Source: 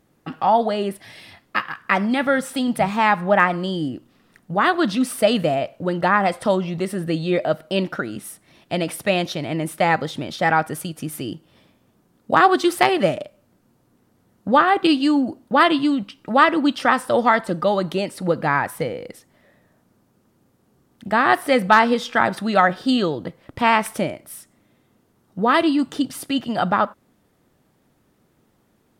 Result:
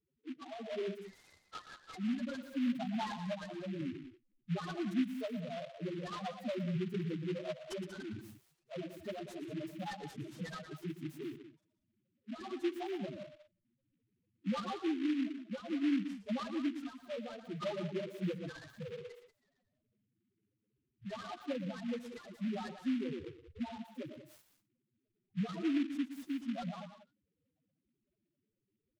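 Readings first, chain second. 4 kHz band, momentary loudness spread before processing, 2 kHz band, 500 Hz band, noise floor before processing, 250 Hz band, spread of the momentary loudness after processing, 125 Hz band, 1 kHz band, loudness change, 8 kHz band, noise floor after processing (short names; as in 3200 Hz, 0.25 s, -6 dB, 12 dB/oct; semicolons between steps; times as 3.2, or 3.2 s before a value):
-21.5 dB, 13 LU, -27.5 dB, -21.0 dB, -63 dBFS, -15.0 dB, 14 LU, -14.5 dB, -28.0 dB, -20.0 dB, under -20 dB, -85 dBFS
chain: bin magnitudes rounded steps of 30 dB; spectral noise reduction 7 dB; compressor 10:1, threshold -26 dBFS, peak gain reduction 17.5 dB; loudest bins only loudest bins 1; rotary speaker horn 0.6 Hz; loudspeakers at several distances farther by 40 m -12 dB, 64 m -12 dB; noise-modulated delay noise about 2200 Hz, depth 0.067 ms; gain +2.5 dB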